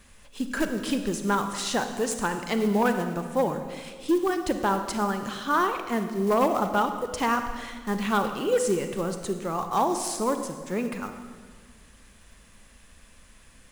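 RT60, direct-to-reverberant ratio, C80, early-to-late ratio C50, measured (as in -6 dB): 1.7 s, 7.0 dB, 9.0 dB, 8.0 dB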